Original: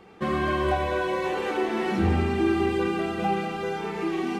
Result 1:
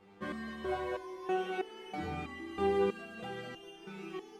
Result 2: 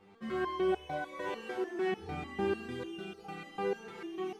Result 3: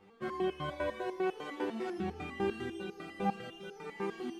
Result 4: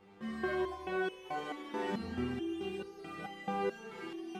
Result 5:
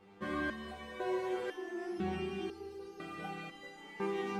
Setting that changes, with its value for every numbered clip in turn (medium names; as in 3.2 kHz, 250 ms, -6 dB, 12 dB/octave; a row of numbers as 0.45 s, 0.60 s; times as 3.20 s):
resonator arpeggio, rate: 3.1 Hz, 6.7 Hz, 10 Hz, 4.6 Hz, 2 Hz